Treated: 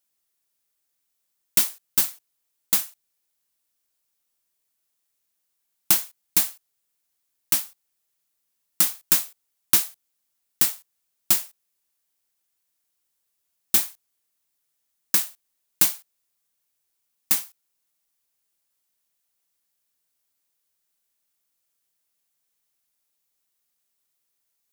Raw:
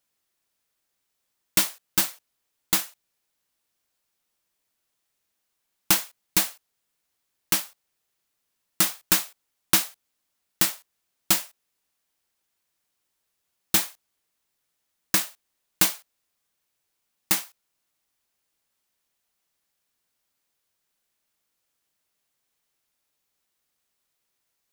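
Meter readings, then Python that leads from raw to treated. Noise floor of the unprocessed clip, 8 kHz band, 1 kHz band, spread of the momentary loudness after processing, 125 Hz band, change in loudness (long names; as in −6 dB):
−78 dBFS, +1.0 dB, −5.0 dB, 14 LU, −5.5 dB, +2.0 dB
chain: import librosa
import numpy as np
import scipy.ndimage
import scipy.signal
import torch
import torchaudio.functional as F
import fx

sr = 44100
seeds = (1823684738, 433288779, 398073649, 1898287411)

y = fx.high_shelf(x, sr, hz=5800.0, db=9.5)
y = y * librosa.db_to_amplitude(-5.5)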